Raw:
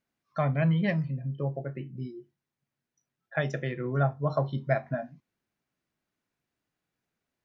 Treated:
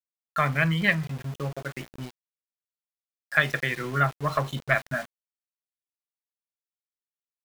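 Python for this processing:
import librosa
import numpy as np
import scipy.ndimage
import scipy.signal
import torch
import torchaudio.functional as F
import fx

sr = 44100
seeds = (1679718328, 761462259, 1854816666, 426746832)

y = fx.diode_clip(x, sr, knee_db=-17.0)
y = fx.band_shelf(y, sr, hz=2200.0, db=13.0, octaves=2.3)
y = np.where(np.abs(y) >= 10.0 ** (-36.5 / 20.0), y, 0.0)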